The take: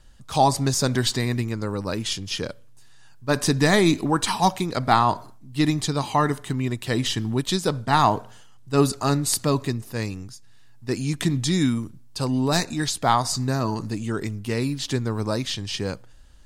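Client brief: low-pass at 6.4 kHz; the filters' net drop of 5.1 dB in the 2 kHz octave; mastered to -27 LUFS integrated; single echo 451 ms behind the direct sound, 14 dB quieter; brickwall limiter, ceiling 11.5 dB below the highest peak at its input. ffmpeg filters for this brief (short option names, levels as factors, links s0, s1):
-af "lowpass=6400,equalizer=f=2000:t=o:g=-6.5,alimiter=limit=0.133:level=0:latency=1,aecho=1:1:451:0.2,volume=1.12"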